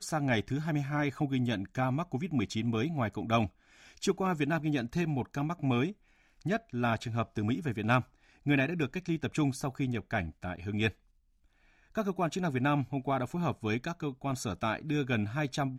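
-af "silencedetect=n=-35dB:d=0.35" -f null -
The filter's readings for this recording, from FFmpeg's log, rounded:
silence_start: 3.47
silence_end: 4.03 | silence_duration: 0.56
silence_start: 5.91
silence_end: 6.46 | silence_duration: 0.55
silence_start: 8.01
silence_end: 8.46 | silence_duration: 0.45
silence_start: 10.90
silence_end: 11.97 | silence_duration: 1.07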